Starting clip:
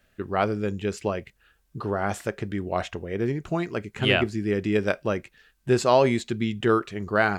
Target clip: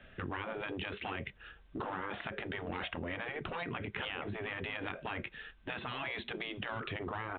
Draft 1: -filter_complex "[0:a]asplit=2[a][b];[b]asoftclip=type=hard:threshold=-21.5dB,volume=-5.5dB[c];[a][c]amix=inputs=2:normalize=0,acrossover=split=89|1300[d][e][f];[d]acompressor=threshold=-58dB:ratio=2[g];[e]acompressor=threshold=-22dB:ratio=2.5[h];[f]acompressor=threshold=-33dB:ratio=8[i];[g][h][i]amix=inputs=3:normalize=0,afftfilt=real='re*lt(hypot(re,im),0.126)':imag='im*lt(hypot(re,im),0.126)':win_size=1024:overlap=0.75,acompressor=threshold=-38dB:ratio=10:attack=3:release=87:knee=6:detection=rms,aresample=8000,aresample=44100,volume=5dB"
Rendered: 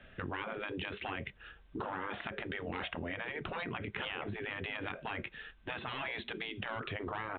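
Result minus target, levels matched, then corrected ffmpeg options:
hard clip: distortion -5 dB
-filter_complex "[0:a]asplit=2[a][b];[b]asoftclip=type=hard:threshold=-31.5dB,volume=-5.5dB[c];[a][c]amix=inputs=2:normalize=0,acrossover=split=89|1300[d][e][f];[d]acompressor=threshold=-58dB:ratio=2[g];[e]acompressor=threshold=-22dB:ratio=2.5[h];[f]acompressor=threshold=-33dB:ratio=8[i];[g][h][i]amix=inputs=3:normalize=0,afftfilt=real='re*lt(hypot(re,im),0.126)':imag='im*lt(hypot(re,im),0.126)':win_size=1024:overlap=0.75,acompressor=threshold=-38dB:ratio=10:attack=3:release=87:knee=6:detection=rms,aresample=8000,aresample=44100,volume=5dB"

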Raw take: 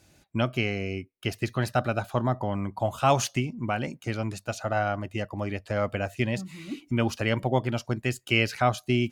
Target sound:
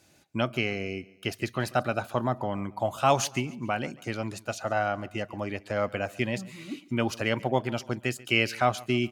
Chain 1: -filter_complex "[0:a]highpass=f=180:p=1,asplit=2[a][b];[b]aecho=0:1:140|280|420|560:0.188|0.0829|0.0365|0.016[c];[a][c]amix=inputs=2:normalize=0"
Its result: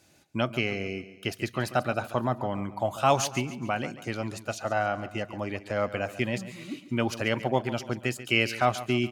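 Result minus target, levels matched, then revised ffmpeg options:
echo-to-direct +7 dB
-filter_complex "[0:a]highpass=f=180:p=1,asplit=2[a][b];[b]aecho=0:1:140|280|420:0.0841|0.037|0.0163[c];[a][c]amix=inputs=2:normalize=0"

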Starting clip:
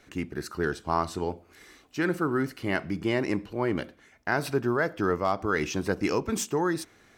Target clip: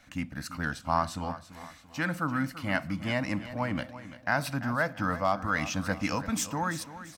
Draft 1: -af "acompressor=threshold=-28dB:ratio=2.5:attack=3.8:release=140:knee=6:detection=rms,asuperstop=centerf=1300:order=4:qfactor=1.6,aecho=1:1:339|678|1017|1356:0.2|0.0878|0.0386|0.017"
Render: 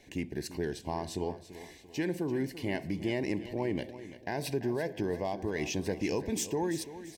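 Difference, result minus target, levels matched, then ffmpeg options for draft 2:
compressor: peak gain reduction +7.5 dB; 500 Hz band +5.5 dB
-af "asuperstop=centerf=390:order=4:qfactor=1.6,aecho=1:1:339|678|1017|1356:0.2|0.0878|0.0386|0.017"

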